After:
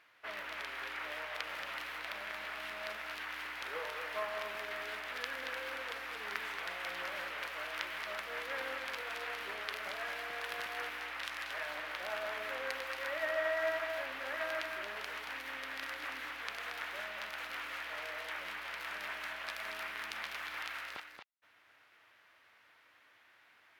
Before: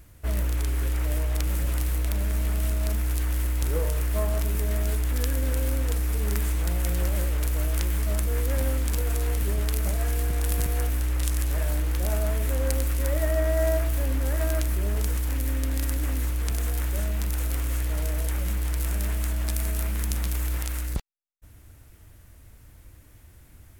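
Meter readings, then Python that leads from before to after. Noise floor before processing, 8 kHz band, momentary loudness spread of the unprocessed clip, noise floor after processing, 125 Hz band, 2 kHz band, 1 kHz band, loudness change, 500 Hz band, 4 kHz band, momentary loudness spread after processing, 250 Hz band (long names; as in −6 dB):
−51 dBFS, −20.5 dB, 2 LU, −66 dBFS, below −40 dB, +2.0 dB, −1.0 dB, −12.5 dB, −9.0 dB, −2.5 dB, 4 LU, −22.0 dB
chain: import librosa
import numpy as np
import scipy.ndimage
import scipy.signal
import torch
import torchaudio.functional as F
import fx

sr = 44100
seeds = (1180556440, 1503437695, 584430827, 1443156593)

y = scipy.signal.sosfilt(scipy.signal.butter(2, 1300.0, 'highpass', fs=sr, output='sos'), x)
y = fx.air_absorb(y, sr, metres=330.0)
y = y + 10.0 ** (-6.5 / 20.0) * np.pad(y, (int(228 * sr / 1000.0), 0))[:len(y)]
y = y * librosa.db_to_amplitude(5.5)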